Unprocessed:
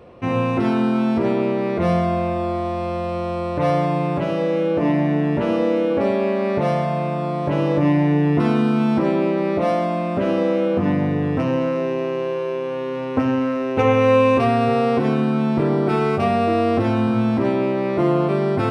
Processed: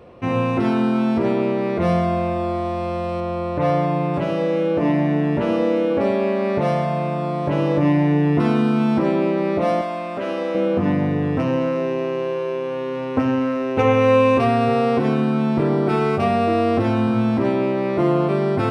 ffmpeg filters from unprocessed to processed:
-filter_complex "[0:a]asettb=1/sr,asplit=3[s0][s1][s2];[s0]atrim=end=3.204[s3];[s1]atrim=start=3.2:end=4.14,asetpts=PTS-STARTPTS,afade=t=in:d=0.004:c=qsin,afade=t=out:st=0.936:d=0.004:c=qsin,highshelf=f=4400:g=-7.5[s4];[s2]atrim=start=4.136[s5];[s3][s4]acrossfade=d=0.004:c1=hsin:c2=qsin[s6];[s6][s5]acrossfade=d=0.004:c1=qsin:c2=hsin,asettb=1/sr,asplit=3[s7][s8][s9];[s7]atrim=end=9.814[s10];[s8]atrim=start=9.81:end=10.55,asetpts=PTS-STARTPTS,afade=t=in:d=0.004:c=qsin,afade=t=out:st=0.736:d=0.004:c=qsin,highpass=f=640:p=1[s11];[s9]atrim=start=10.546[s12];[s10][s11]acrossfade=d=0.004:c1=hsin:c2=qsin[s13];[s13][s12]acrossfade=d=0.004:c1=qsin:c2=hsin"

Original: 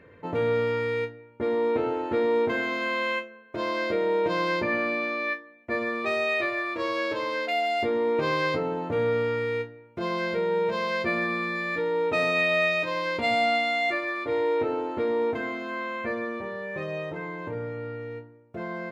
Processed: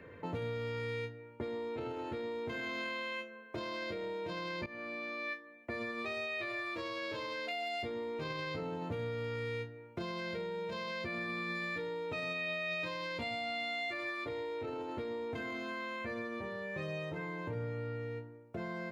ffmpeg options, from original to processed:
-filter_complex "[0:a]asplit=2[s0][s1];[s0]atrim=end=4.66,asetpts=PTS-STARTPTS,afade=t=out:st=4.656:d=0.004:c=hsin:silence=0.105925[s2];[s1]atrim=start=4.66,asetpts=PTS-STARTPTS,afade=t=in:d=1.16:silence=0.105925[s3];[s2][s3]concat=n=2:v=0:a=1,acrossover=split=4300[s4][s5];[s5]acompressor=threshold=0.00251:ratio=4:attack=1:release=60[s6];[s4][s6]amix=inputs=2:normalize=0,alimiter=limit=0.0668:level=0:latency=1:release=14,acrossover=split=160|3000[s7][s8][s9];[s8]acompressor=threshold=0.00794:ratio=3[s10];[s7][s10][s9]amix=inputs=3:normalize=0"

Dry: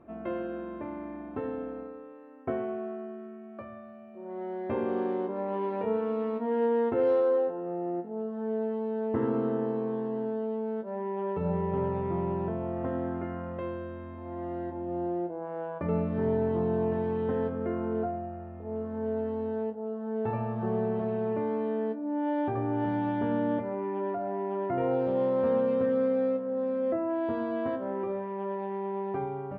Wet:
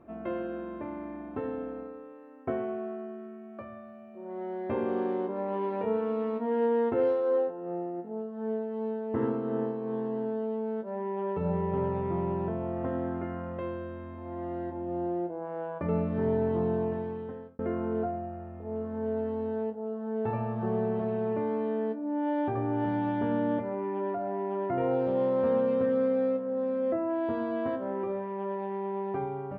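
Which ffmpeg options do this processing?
-filter_complex "[0:a]asettb=1/sr,asplit=3[s0][s1][s2];[s0]atrim=end=7.014[s3];[s1]atrim=start=7.01:end=9.97,asetpts=PTS-STARTPTS,afade=t=in:d=0.004:c=qsin,afade=t=out:st=2.956:d=0.004:c=qsin,tremolo=f=2.7:d=0.39[s4];[s2]atrim=start=9.966[s5];[s3][s4]acrossfade=d=0.004:c1=hsin:c2=qsin[s6];[s6][s5]acrossfade=d=0.004:c1=qsin:c2=hsin,asplit=2[s7][s8];[s7]atrim=end=17.59,asetpts=PTS-STARTPTS,afade=t=out:st=16.67:d=0.92[s9];[s8]atrim=start=17.59,asetpts=PTS-STARTPTS,afade=t=in:d=0.004:c=hsin[s10];[s9][s10]concat=n=2:v=0:a=1"

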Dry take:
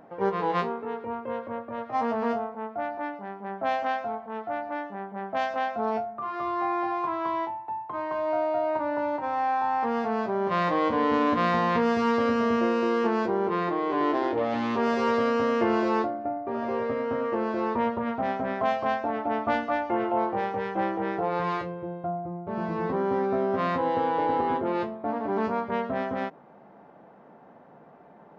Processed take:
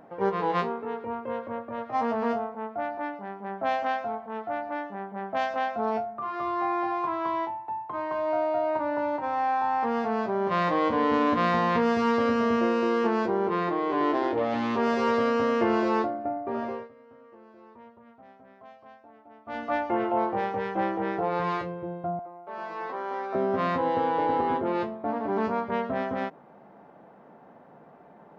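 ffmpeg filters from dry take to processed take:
-filter_complex "[0:a]asettb=1/sr,asplit=3[s0][s1][s2];[s0]atrim=end=22.194[s3];[s1]atrim=start=22.19:end=23.35,asetpts=PTS-STARTPTS,afade=t=in:d=0.004:c=qsin,afade=t=out:st=1.156:d=0.004:c=qsin,highpass=700[s4];[s2]atrim=start=23.346[s5];[s3][s4]acrossfade=d=0.004:c1=hsin:c2=qsin[s6];[s6][s5]acrossfade=d=0.004:c1=qsin:c2=hsin,asplit=3[s7][s8][s9];[s7]atrim=end=16.89,asetpts=PTS-STARTPTS,afade=t=out:st=16.59:d=0.3:silence=0.0630957[s10];[s8]atrim=start=16.89:end=19.45,asetpts=PTS-STARTPTS,volume=0.0631[s11];[s9]atrim=start=19.45,asetpts=PTS-STARTPTS,afade=t=in:d=0.3:silence=0.0630957[s12];[s10][s11][s12]concat=n=3:v=0:a=1"

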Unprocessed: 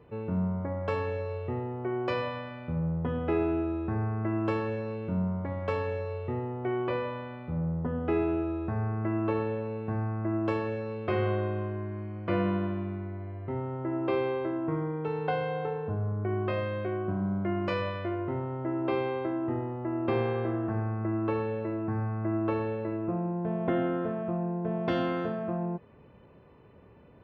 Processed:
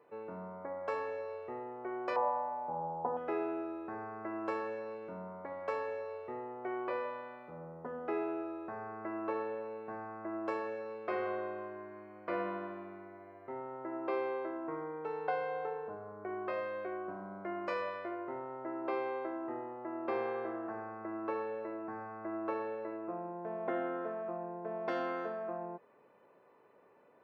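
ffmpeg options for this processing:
-filter_complex "[0:a]asettb=1/sr,asplit=3[s0][s1][s2];[s0]atrim=end=2.164[s3];[s1]atrim=start=2.16:end=3.17,asetpts=PTS-STARTPTS,afade=t=in:d=0.004:c=qsin,afade=t=out:st=1.006:d=0.004:c=qsin,lowpass=f=850:t=q:w=10[s4];[s2]atrim=start=3.166[s5];[s3][s4]acrossfade=d=0.004:c1=hsin:c2=qsin[s6];[s6][s5]acrossfade=d=0.004:c1=qsin:c2=hsin,highpass=490,equalizer=f=3200:w=1.9:g=-10.5,volume=0.75"

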